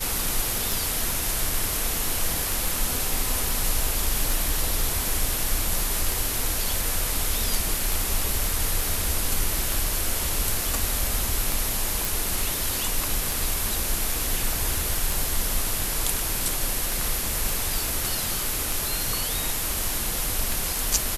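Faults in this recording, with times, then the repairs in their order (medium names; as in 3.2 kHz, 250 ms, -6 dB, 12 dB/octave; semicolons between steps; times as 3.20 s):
tick 33 1/3 rpm
12.05 s: pop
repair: de-click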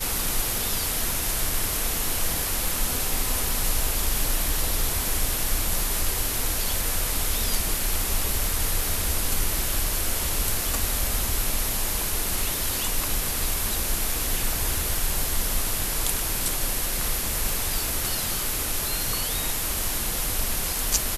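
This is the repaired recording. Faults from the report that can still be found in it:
nothing left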